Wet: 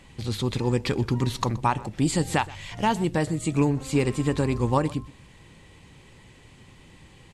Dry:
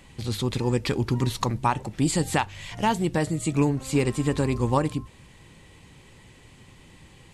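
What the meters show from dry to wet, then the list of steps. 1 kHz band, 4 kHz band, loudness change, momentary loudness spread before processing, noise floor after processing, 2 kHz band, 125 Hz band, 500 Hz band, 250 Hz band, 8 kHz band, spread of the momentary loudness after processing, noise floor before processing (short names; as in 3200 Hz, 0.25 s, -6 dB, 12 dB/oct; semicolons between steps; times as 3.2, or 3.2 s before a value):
0.0 dB, -0.5 dB, 0.0 dB, 4 LU, -52 dBFS, 0.0 dB, 0.0 dB, 0.0 dB, 0.0 dB, -2.0 dB, 5 LU, -52 dBFS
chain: high shelf 11000 Hz -7.5 dB; on a send: echo 0.124 s -20.5 dB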